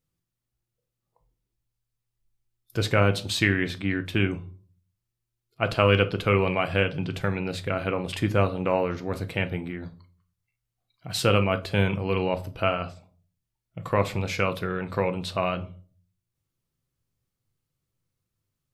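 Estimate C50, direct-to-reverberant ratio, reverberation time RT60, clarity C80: 17.5 dB, 8.0 dB, 0.40 s, 23.5 dB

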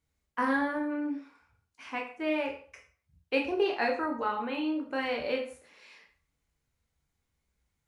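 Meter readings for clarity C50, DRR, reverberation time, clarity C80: 8.5 dB, 1.0 dB, 0.40 s, 12.0 dB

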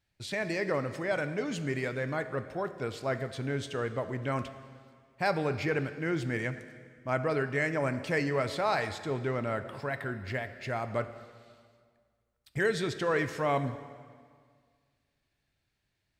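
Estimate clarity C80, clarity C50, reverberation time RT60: 12.5 dB, 11.5 dB, 1.9 s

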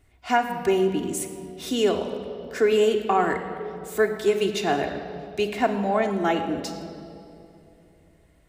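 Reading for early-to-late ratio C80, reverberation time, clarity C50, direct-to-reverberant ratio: 8.5 dB, 2.9 s, 7.5 dB, 2.5 dB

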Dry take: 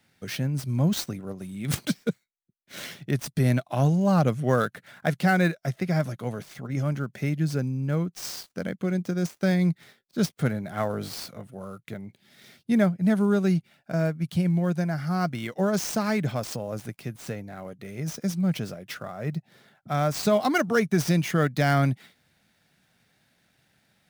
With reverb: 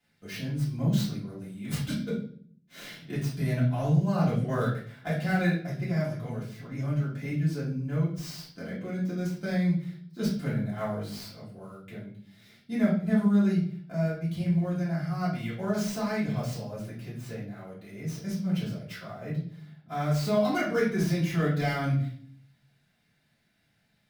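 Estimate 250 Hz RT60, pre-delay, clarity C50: 0.85 s, 3 ms, 5.0 dB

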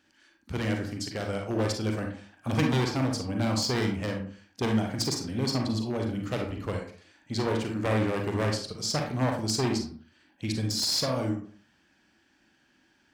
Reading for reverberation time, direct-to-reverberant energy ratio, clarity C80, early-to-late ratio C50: 0.45 s, 1.5 dB, 10.5 dB, 4.5 dB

